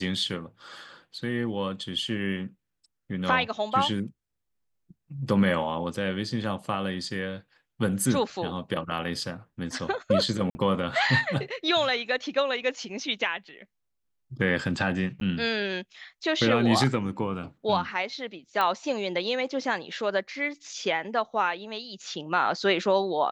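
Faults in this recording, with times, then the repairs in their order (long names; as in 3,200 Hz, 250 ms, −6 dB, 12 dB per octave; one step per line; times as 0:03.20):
0:10.50–0:10.55: drop-out 50 ms
0:15.20–0:15.21: drop-out 12 ms
0:18.61: click −14 dBFS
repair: click removal
repair the gap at 0:10.50, 50 ms
repair the gap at 0:15.20, 12 ms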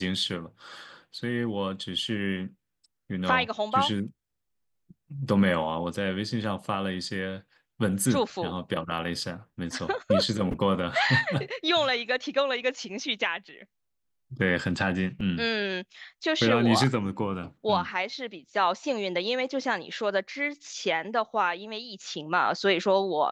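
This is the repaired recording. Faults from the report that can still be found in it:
none of them is left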